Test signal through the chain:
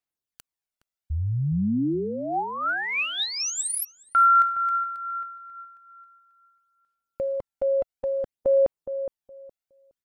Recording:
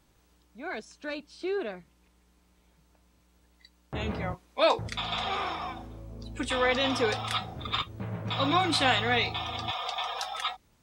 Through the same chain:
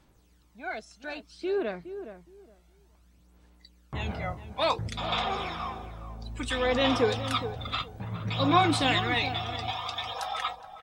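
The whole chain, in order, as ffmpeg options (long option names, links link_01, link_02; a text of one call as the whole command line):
ffmpeg -i in.wav -filter_complex "[0:a]aphaser=in_gain=1:out_gain=1:delay=1.5:decay=0.5:speed=0.58:type=sinusoidal,asplit=2[link_01][link_02];[link_02]adelay=416,lowpass=frequency=1200:poles=1,volume=-10dB,asplit=2[link_03][link_04];[link_04]adelay=416,lowpass=frequency=1200:poles=1,volume=0.2,asplit=2[link_05][link_06];[link_06]adelay=416,lowpass=frequency=1200:poles=1,volume=0.2[link_07];[link_03][link_05][link_07]amix=inputs=3:normalize=0[link_08];[link_01][link_08]amix=inputs=2:normalize=0,volume=-2dB" out.wav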